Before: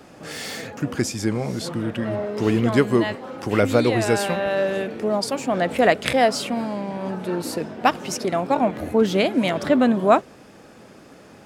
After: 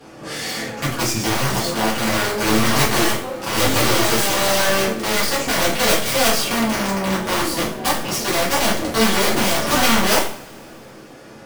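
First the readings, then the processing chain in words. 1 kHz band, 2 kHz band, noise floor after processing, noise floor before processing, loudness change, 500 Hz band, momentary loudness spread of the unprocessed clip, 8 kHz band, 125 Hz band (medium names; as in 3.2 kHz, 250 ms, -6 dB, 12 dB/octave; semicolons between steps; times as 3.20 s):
+3.0 dB, +7.0 dB, -40 dBFS, -47 dBFS, +3.5 dB, -1.0 dB, 10 LU, +13.0 dB, +1.5 dB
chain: Chebyshev shaper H 3 -27 dB, 8 -16 dB, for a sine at -3 dBFS; integer overflow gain 17 dB; two-slope reverb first 0.45 s, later 3 s, from -27 dB, DRR -8.5 dB; trim -2 dB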